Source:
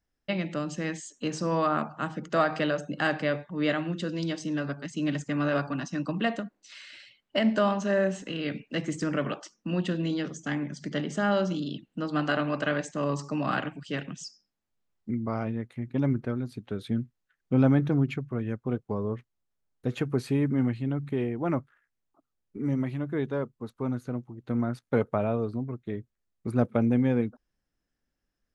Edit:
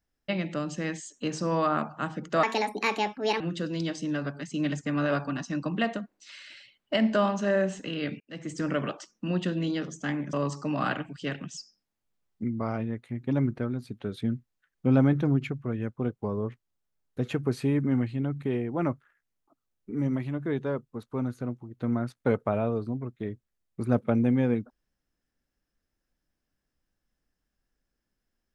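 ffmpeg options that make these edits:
-filter_complex "[0:a]asplit=5[a][b][c][d][e];[a]atrim=end=2.434[f];[b]atrim=start=2.43:end=3.83,asetpts=PTS-STARTPTS,asetrate=63504,aresample=44100[g];[c]atrim=start=3.826:end=8.63,asetpts=PTS-STARTPTS,afade=t=out:st=4.8:d=0.004:c=hsin[h];[d]atrim=start=8.63:end=10.762,asetpts=PTS-STARTPTS,afade=t=in:d=0.47[i];[e]atrim=start=12.998[j];[f][g]acrossfade=d=0.004:c1=hsin:c2=hsin[k];[h][i]concat=n=2:v=0:a=1[l];[k][l]acrossfade=d=0.004:c1=hsin:c2=hsin[m];[m][j]acrossfade=d=0.004:c1=hsin:c2=hsin"

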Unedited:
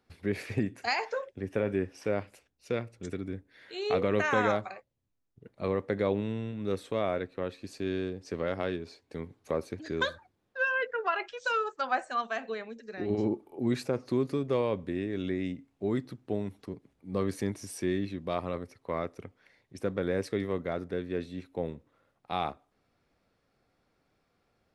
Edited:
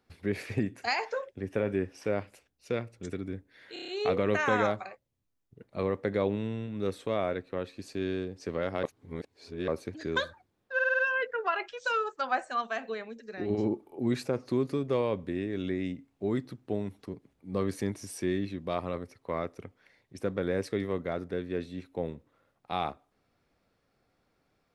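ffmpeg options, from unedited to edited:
-filter_complex "[0:a]asplit=13[a][b][c][d][e][f][g][h][i][j][k][l][m];[a]atrim=end=3.762[n];[b]atrim=start=3.728:end=3.762[o];[c]atrim=start=3.728:end=3.762[p];[d]atrim=start=3.728:end=3.762[q];[e]atrim=start=3.728:end=3.762[r];[f]atrim=start=3.728:end=8.682[s];[g]atrim=start=8.678:end=9.532,asetpts=PTS-STARTPTS,areverse[t];[h]atrim=start=9.528:end=10.642[u];[i]atrim=start=10.588:end=10.642[v];[j]atrim=start=10.588:end=10.642[w];[k]atrim=start=10.588:end=10.642[x];[l]atrim=start=10.588:end=10.642[y];[m]atrim=start=10.588[z];[n][o]acrossfade=d=0.004:c1=hsin:c2=hsin[aa];[aa][p]acrossfade=d=0.004:c1=hsin:c2=hsin[ab];[ab][q]acrossfade=d=0.004:c1=hsin:c2=hsin[ac];[ac][r]acrossfade=d=0.004:c1=hsin:c2=hsin[ad];[ad][s]acrossfade=d=0.004:c1=hsin:c2=hsin[ae];[ae][t]acrossfade=d=0.004:c1=hsin:c2=hsin[af];[af][u]acrossfade=d=0.004:c1=hsin:c2=hsin[ag];[ag][v]acrossfade=d=0.004:c1=hsin:c2=hsin[ah];[ah][w]acrossfade=d=0.004:c1=hsin:c2=hsin[ai];[ai][x]acrossfade=d=0.004:c1=hsin:c2=hsin[aj];[aj][y]acrossfade=d=0.004:c1=hsin:c2=hsin[ak];[ak][z]acrossfade=d=0.004:c1=hsin:c2=hsin"

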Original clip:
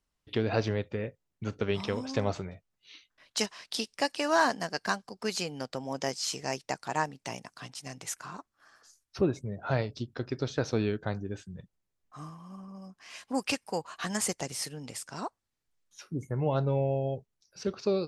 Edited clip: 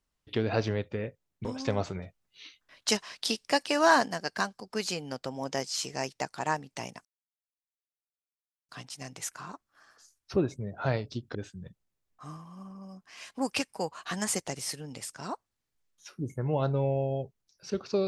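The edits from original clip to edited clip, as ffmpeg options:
-filter_complex "[0:a]asplit=6[a][b][c][d][e][f];[a]atrim=end=1.452[g];[b]atrim=start=1.938:end=2.442[h];[c]atrim=start=2.438:end=4.572,asetpts=PTS-STARTPTS,volume=3dB[i];[d]atrim=start=4.568:end=7.54,asetpts=PTS-STARTPTS,afade=t=out:st=2.968:d=0.004:c=hsin,apad=pad_dur=1.64[j];[e]atrim=start=7.54:end=10.202,asetpts=PTS-STARTPTS,afade=t=in:d=0.004:c=hsin[k];[f]atrim=start=11.278[l];[g][h]acrossfade=d=0.004:c1=hsin:c2=hsin[m];[m][i]acrossfade=d=0.004:c1=hsin:c2=hsin[n];[j][k]concat=n=2:v=0:a=1[o];[n][o]acrossfade=d=0.004:c1=hsin:c2=hsin[p];[p][l]acrossfade=d=0.004:c1=hsin:c2=hsin"

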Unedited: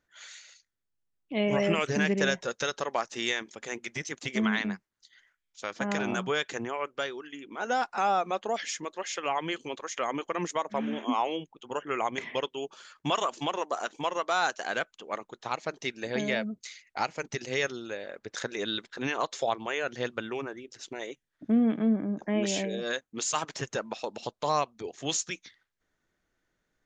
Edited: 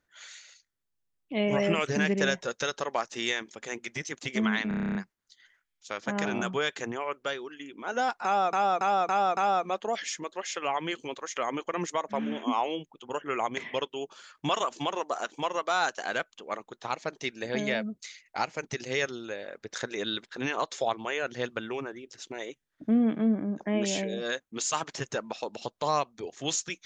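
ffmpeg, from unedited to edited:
-filter_complex "[0:a]asplit=14[a][b][c][d][e][f][g][h][i][j][k][l][m][n];[a]atrim=end=4.712[o];[b]atrim=start=4.678:end=4.712[p];[c]atrim=start=4.678:end=4.712[q];[d]atrim=start=4.678:end=4.712[r];[e]atrim=start=4.678:end=4.712[s];[f]atrim=start=4.678:end=4.712[t];[g]atrim=start=4.678:end=4.712[u];[h]atrim=start=4.678:end=4.712[v];[i]atrim=start=4.678:end=4.712[w];[j]atrim=start=4.678:end=8.262[x];[k]atrim=start=7.978:end=8.262[y];[l]atrim=start=7.978:end=8.262[z];[m]atrim=start=7.978:end=8.262[aa];[n]atrim=start=7.978[ab];[o][p]acrossfade=d=0.004:c1=hsin:c2=hsin[ac];[ac][q]acrossfade=d=0.004:c1=hsin:c2=hsin[ad];[ad][r]acrossfade=d=0.004:c1=hsin:c2=hsin[ae];[ae][s]acrossfade=d=0.004:c1=hsin:c2=hsin[af];[af][t]acrossfade=d=0.004:c1=hsin:c2=hsin[ag];[ag][u]acrossfade=d=0.004:c1=hsin:c2=hsin[ah];[ah][v]acrossfade=d=0.004:c1=hsin:c2=hsin[ai];[ai][w]acrossfade=d=0.004:c1=hsin:c2=hsin[aj];[aj][x]acrossfade=d=0.004:c1=hsin:c2=hsin[ak];[ak][y]acrossfade=d=0.004:c1=hsin:c2=hsin[al];[al][z]acrossfade=d=0.004:c1=hsin:c2=hsin[am];[am][aa]acrossfade=d=0.004:c1=hsin:c2=hsin[an];[an][ab]acrossfade=d=0.004:c1=hsin:c2=hsin"

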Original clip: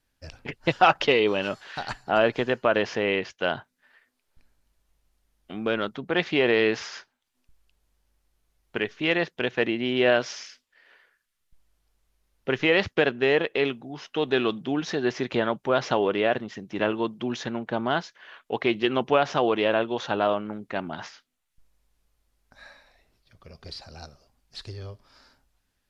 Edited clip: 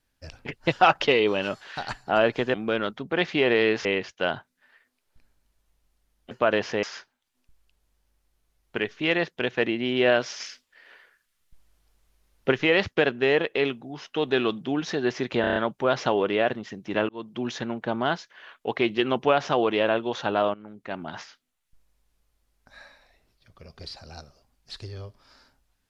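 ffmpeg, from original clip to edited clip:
-filter_complex "[0:a]asplit=14[a][b][c][d][e][f][g][h][i][j][k][l][m][n];[a]atrim=end=2.542[o];[b]atrim=start=5.518:end=6.832[p];[c]atrim=start=3.058:end=5.522[q];[d]atrim=start=2.538:end=3.062[r];[e]atrim=start=6.828:end=10.402[s];[f]atrim=start=10.398:end=12.522,asetpts=PTS-STARTPTS,volume=5dB[t];[g]atrim=start=12.518:end=15.442[u];[h]atrim=start=15.408:end=15.442[v];[i]atrim=start=15.408:end=15.442[w];[j]atrim=start=15.408:end=15.442[x];[k]atrim=start=15.408:end=15.442[y];[l]atrim=start=15.408:end=16.94,asetpts=PTS-STARTPTS,afade=t=out:st=1.528:d=0.004:c=hsin[z];[m]atrim=start=16.94:end=20.39,asetpts=PTS-STARTPTS,afade=t=in:d=0.45:c=qsin,afade=t=out:st=3.446:d=0.004:c=hsin:silence=0.188365[aa];[n]atrim=start=20.39,asetpts=PTS-STARTPTS,afade=t=in:d=0.66:silence=0.188365[ab];[o][p]acrossfade=d=0.004:c1=hsin:c2=hsin[ac];[ac][q]acrossfade=d=0.004:c1=hsin:c2=hsin[ad];[ad][r]acrossfade=d=0.004:c1=hsin:c2=hsin[ae];[ae][s]acrossfade=d=0.004:c1=hsin:c2=hsin[af];[af][t]acrossfade=d=0.004:c1=hsin:c2=hsin[ag];[ag][u]acrossfade=d=0.004:c1=hsin:c2=hsin[ah];[ah][v]acrossfade=d=0.004:c1=hsin:c2=hsin[ai];[ai][w]acrossfade=d=0.004:c1=hsin:c2=hsin[aj];[aj][x]acrossfade=d=0.004:c1=hsin:c2=hsin[ak];[ak][y]acrossfade=d=0.004:c1=hsin:c2=hsin[al];[z][aa][ab]concat=n=3:v=0:a=1[am];[al][am]acrossfade=d=0.004:c1=hsin:c2=hsin"

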